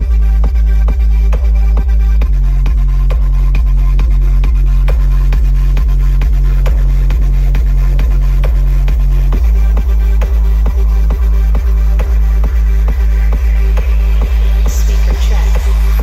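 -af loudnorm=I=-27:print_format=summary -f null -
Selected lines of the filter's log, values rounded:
Input Integrated:    -13.2 LUFS
Input True Peak:      -1.2 dBTP
Input LRA:             0.2 LU
Input Threshold:     -23.2 LUFS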